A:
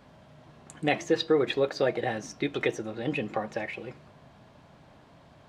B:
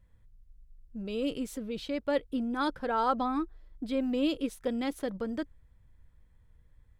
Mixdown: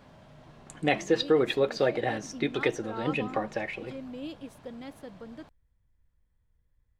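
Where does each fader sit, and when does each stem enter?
+0.5 dB, -10.5 dB; 0.00 s, 0.00 s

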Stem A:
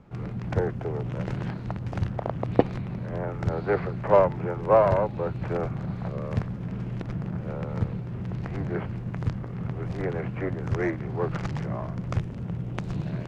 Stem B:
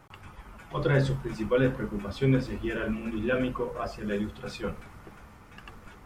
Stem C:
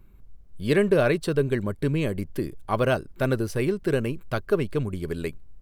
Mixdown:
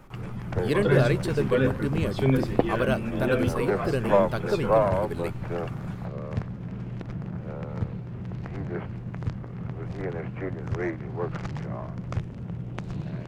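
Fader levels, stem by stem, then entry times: -2.5 dB, +1.0 dB, -3.5 dB; 0.00 s, 0.00 s, 0.00 s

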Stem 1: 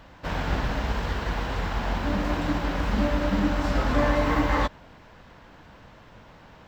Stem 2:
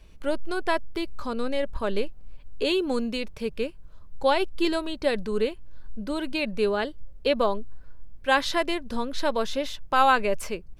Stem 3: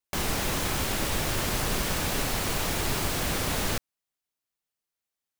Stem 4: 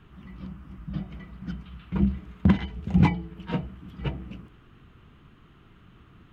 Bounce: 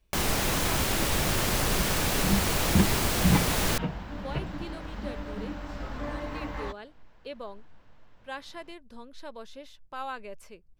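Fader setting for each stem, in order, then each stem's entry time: -13.0 dB, -17.0 dB, +1.5 dB, -3.5 dB; 2.05 s, 0.00 s, 0.00 s, 0.30 s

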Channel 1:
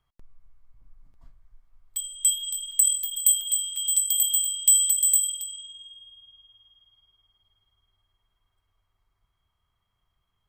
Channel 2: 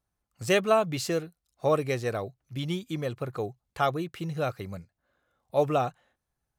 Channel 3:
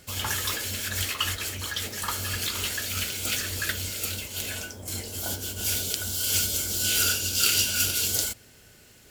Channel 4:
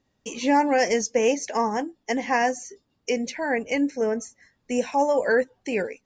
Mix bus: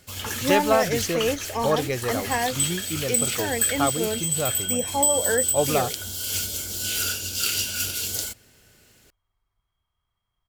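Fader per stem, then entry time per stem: -3.5 dB, +1.5 dB, -2.5 dB, -3.5 dB; 0.35 s, 0.00 s, 0.00 s, 0.00 s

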